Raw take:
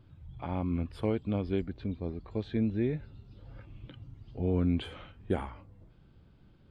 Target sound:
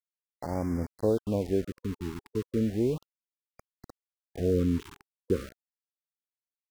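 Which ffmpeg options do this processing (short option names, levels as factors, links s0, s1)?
-af "equalizer=f=500:t=o:w=1:g=8,equalizer=f=2000:t=o:w=1:g=-8,equalizer=f=4000:t=o:w=1:g=-9,aeval=exprs='val(0)*gte(abs(val(0)),0.0133)':c=same,afftfilt=real='re*(1-between(b*sr/1024,570*pow(3400/570,0.5+0.5*sin(2*PI*0.35*pts/sr))/1.41,570*pow(3400/570,0.5+0.5*sin(2*PI*0.35*pts/sr))*1.41))':imag='im*(1-between(b*sr/1024,570*pow(3400/570,0.5+0.5*sin(2*PI*0.35*pts/sr))/1.41,570*pow(3400/570,0.5+0.5*sin(2*PI*0.35*pts/sr))*1.41))':win_size=1024:overlap=0.75"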